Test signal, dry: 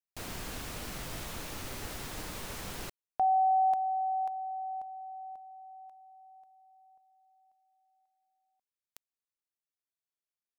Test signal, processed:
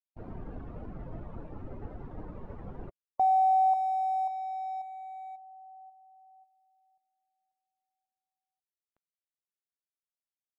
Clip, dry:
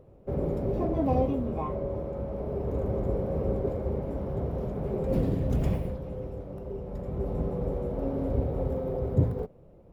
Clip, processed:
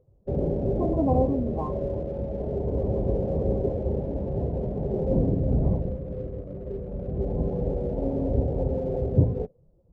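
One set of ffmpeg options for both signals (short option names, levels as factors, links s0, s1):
-filter_complex "[0:a]afftdn=nr=15:nf=-40,lowpass=1000,asplit=2[s0][s1];[s1]aeval=exprs='sgn(val(0))*max(abs(val(0))-0.00398,0)':c=same,volume=0.355[s2];[s0][s2]amix=inputs=2:normalize=0,volume=1.12"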